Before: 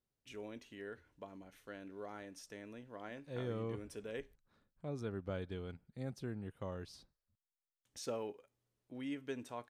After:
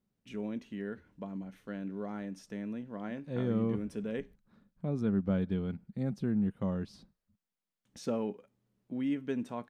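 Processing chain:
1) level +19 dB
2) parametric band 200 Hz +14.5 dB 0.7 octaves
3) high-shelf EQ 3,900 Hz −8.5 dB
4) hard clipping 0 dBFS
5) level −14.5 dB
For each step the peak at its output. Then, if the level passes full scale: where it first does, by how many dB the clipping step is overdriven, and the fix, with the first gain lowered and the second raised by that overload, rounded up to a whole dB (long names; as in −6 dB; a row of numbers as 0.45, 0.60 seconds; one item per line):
−8.0, −5.0, −5.0, −5.0, −19.5 dBFS
no step passes full scale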